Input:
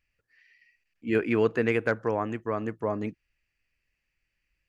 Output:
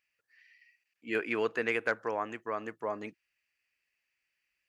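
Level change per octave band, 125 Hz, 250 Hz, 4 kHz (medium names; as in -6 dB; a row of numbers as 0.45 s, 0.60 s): -17.5 dB, -10.5 dB, -0.5 dB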